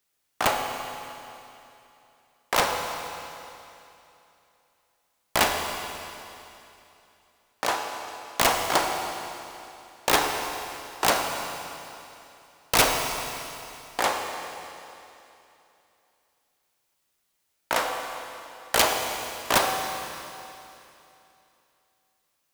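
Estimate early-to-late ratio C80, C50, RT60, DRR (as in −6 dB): 4.5 dB, 3.5 dB, 2.9 s, 3.0 dB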